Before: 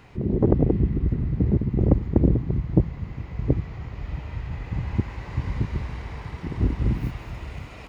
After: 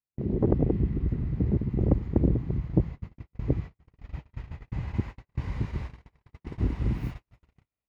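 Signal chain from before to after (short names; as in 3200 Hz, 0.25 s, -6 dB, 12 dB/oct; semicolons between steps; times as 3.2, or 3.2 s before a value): gate -29 dBFS, range -50 dB; gain -4.5 dB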